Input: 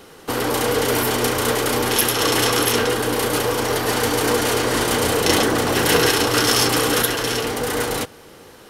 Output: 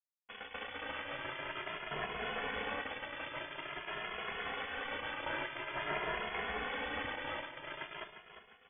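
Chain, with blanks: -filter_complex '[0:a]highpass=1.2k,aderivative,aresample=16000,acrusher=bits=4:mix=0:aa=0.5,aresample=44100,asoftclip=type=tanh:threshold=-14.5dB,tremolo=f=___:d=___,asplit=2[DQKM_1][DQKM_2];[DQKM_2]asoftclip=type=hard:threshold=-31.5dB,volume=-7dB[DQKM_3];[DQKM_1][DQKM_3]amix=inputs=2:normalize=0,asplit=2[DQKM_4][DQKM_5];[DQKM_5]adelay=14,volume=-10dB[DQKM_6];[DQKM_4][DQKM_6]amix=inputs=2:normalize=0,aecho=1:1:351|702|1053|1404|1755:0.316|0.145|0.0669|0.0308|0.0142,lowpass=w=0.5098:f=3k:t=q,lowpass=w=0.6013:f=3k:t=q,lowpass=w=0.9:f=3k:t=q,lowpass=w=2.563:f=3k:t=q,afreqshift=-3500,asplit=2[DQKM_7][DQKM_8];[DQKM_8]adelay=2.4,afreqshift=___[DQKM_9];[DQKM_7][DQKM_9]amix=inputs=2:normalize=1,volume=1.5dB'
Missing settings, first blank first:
110, 0.824, 0.48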